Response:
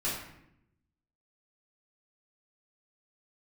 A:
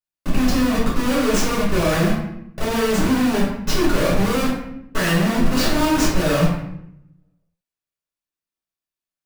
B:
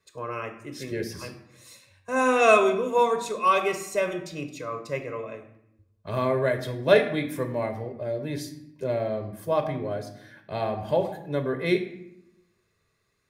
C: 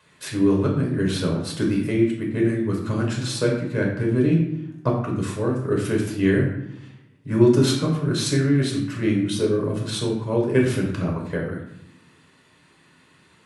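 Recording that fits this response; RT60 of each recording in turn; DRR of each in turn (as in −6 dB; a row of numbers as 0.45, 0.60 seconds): A; 0.75, 0.80, 0.75 seconds; −9.0, 6.0, −1.5 decibels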